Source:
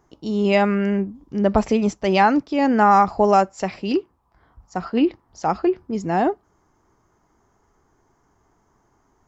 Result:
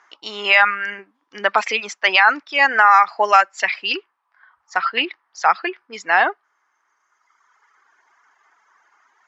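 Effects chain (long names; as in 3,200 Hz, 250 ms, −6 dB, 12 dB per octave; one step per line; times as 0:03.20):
four-pole ladder band-pass 2,100 Hz, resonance 30%
reverb reduction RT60 1.6 s
boost into a limiter +28 dB
level −1 dB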